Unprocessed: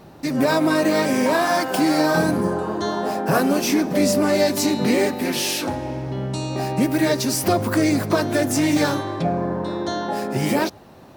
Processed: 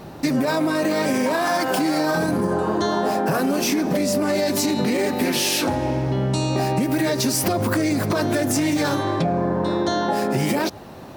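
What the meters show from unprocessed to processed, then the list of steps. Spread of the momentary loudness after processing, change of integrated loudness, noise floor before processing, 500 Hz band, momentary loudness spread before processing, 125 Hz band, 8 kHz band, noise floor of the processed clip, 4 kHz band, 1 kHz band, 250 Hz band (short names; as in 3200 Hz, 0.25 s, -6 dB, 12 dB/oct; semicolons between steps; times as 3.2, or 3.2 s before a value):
2 LU, -0.5 dB, -44 dBFS, -1.0 dB, 7 LU, +1.5 dB, +0.5 dB, -38 dBFS, +0.5 dB, 0.0 dB, -1.0 dB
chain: limiter -14 dBFS, peak gain reduction 8 dB; compressor, threshold -24 dBFS, peak gain reduction 6 dB; gain +6.5 dB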